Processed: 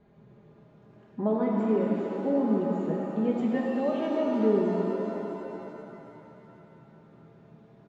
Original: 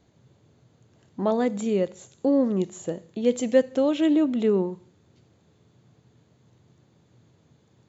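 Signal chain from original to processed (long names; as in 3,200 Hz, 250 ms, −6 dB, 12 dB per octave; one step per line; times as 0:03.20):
low-pass filter 1,700 Hz 12 dB per octave
comb filter 4.9 ms, depth 87%
downward compressor 1.5 to 1, threshold −41 dBFS, peak gain reduction 10 dB
reverb with rising layers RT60 3.1 s, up +7 semitones, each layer −8 dB, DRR −2 dB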